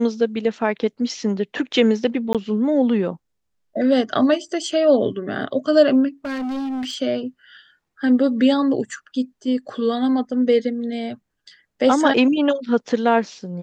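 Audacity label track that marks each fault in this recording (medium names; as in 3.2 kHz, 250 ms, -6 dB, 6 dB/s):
2.330000	2.350000	dropout 17 ms
6.250000	6.960000	clipped -23.5 dBFS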